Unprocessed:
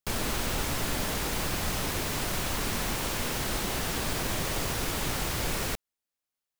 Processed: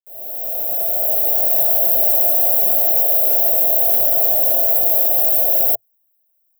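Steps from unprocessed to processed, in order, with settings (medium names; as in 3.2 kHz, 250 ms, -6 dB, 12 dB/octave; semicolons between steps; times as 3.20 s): fade-in on the opening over 1.65 s; FFT filter 110 Hz 0 dB, 180 Hz -21 dB, 280 Hz -5 dB, 440 Hz 0 dB, 670 Hz +14 dB, 1 kHz -20 dB, 4 kHz -18 dB, 5.8 kHz -28 dB, 9.2 kHz -20 dB, 13 kHz +2 dB; in parallel at +2 dB: peak limiter -25 dBFS, peak gain reduction 7.5 dB; on the sum: RIAA curve recording; trim +1 dB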